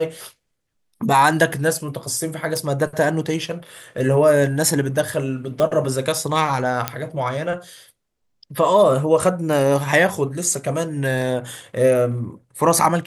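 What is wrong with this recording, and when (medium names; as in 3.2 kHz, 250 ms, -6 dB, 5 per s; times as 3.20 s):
2.57 s: pop
5.60 s: pop -9 dBFS
6.88 s: pop -4 dBFS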